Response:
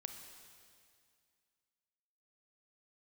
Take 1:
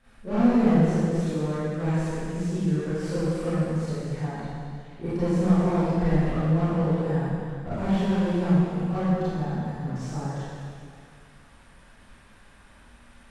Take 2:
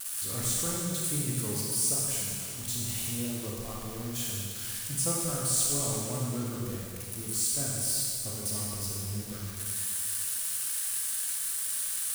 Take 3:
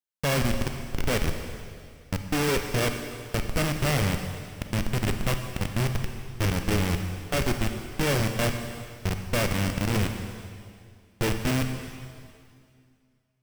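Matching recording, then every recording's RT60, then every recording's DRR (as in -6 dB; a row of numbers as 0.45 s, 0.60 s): 3; 2.2 s, 2.2 s, 2.2 s; -14.0 dB, -4.0 dB, 5.5 dB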